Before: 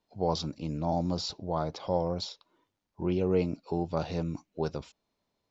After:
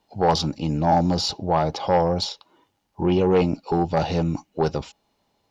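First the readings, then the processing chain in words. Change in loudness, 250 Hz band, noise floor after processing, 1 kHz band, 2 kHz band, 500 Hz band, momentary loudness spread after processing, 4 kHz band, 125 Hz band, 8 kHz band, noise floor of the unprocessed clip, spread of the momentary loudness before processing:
+9.5 dB, +9.0 dB, -72 dBFS, +13.0 dB, +13.5 dB, +9.0 dB, 7 LU, +10.5 dB, +8.5 dB, no reading, -82 dBFS, 8 LU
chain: Chebyshev shaper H 5 -11 dB, 7 -22 dB, 8 -31 dB, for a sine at -14 dBFS; small resonant body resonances 820/2900 Hz, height 10 dB, ringing for 45 ms; trim +5 dB

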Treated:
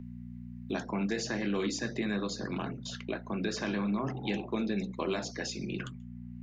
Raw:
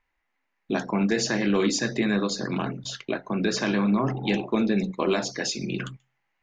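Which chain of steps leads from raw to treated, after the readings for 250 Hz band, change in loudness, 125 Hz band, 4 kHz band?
-8.0 dB, -8.5 dB, -7.0 dB, -8.5 dB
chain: mains buzz 60 Hz, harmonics 4, -40 dBFS 0 dB/octave; three bands compressed up and down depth 40%; trim -8.5 dB

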